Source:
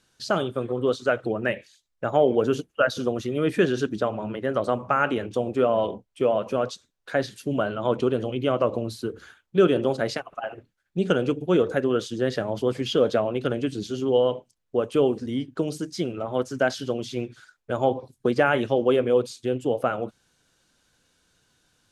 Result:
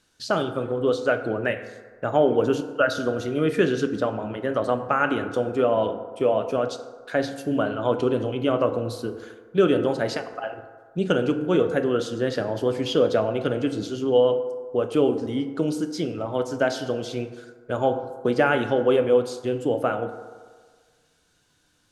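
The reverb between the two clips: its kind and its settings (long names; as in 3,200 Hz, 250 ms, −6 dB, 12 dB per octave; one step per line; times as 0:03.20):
feedback delay network reverb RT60 1.6 s, low-frequency decay 0.75×, high-frequency decay 0.4×, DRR 8 dB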